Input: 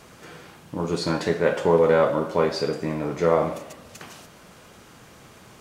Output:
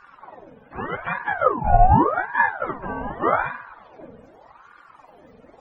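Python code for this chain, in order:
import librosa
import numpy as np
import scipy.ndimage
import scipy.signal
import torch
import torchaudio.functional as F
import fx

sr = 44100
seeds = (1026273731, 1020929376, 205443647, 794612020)

y = fx.octave_mirror(x, sr, pivot_hz=430.0)
y = fx.cabinet(y, sr, low_hz=210.0, low_slope=12, high_hz=4600.0, hz=(370.0, 600.0, 1300.0), db=(9, -10, -10), at=(1.13, 2.63))
y = fx.ring_lfo(y, sr, carrier_hz=830.0, swing_pct=60, hz=0.84)
y = y * librosa.db_to_amplitude(2.5)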